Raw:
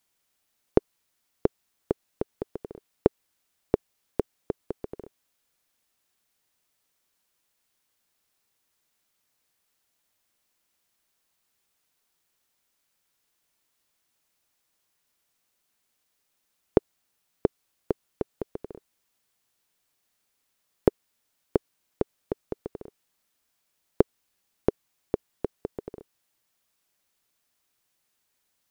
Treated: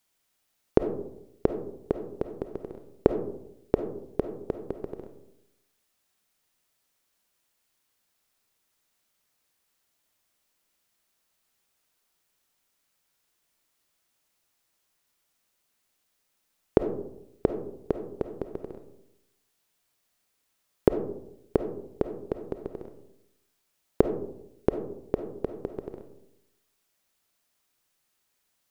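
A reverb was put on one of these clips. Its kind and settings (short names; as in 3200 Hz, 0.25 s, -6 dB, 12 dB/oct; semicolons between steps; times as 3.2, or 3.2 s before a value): digital reverb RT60 0.81 s, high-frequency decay 0.3×, pre-delay 10 ms, DRR 7 dB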